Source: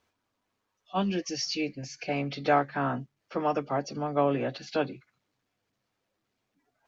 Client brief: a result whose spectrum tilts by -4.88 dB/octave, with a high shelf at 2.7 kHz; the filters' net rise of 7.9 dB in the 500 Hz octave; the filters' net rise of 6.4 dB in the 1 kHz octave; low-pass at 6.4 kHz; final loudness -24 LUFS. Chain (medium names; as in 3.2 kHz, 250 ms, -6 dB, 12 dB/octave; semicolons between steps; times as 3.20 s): low-pass 6.4 kHz; peaking EQ 500 Hz +8 dB; peaking EQ 1 kHz +4.5 dB; treble shelf 2.7 kHz +6 dB; trim +0.5 dB